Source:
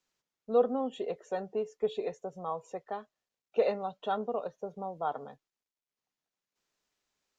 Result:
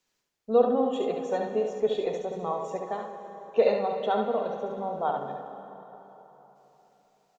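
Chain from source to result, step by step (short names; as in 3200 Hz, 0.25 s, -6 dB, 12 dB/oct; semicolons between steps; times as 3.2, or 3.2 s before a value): bell 1300 Hz -4 dB 0.3 oct; on a send: echo 71 ms -5 dB; on the sum: plate-style reverb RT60 3.8 s, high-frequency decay 0.7×, DRR 6 dB; gain +4.5 dB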